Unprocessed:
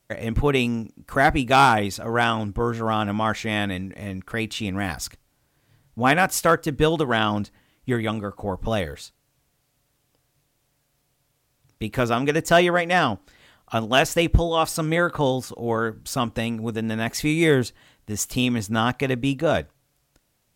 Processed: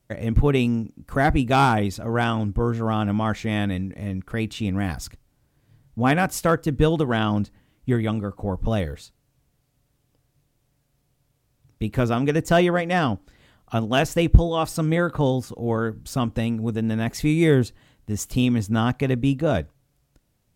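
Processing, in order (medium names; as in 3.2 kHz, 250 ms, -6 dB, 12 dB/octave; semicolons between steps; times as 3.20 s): bass shelf 390 Hz +10.5 dB; trim -5 dB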